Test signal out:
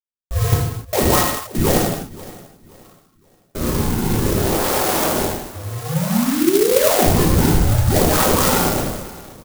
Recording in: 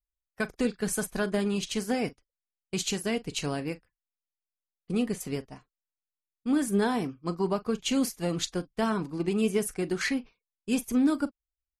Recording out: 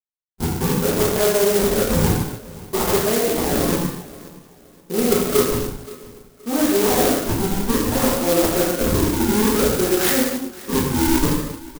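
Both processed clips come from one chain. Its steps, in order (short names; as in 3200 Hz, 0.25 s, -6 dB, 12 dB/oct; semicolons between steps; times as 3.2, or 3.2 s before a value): notch 1100 Hz, Q 22; low-pass opened by the level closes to 3000 Hz, open at -21.5 dBFS; gate with hold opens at -49 dBFS; HPF 450 Hz 12 dB/oct; high shelf 2500 Hz -11 dB; AGC gain up to 14 dB; limiter -12.5 dBFS; reverse; compressor, threshold -28 dBFS; reverse; decimation with a swept rate 42×, swing 160% 0.57 Hz; feedback echo 0.524 s, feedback 32%, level -19.5 dB; non-linear reverb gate 0.33 s falling, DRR -8 dB; clock jitter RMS 0.11 ms; gain +5.5 dB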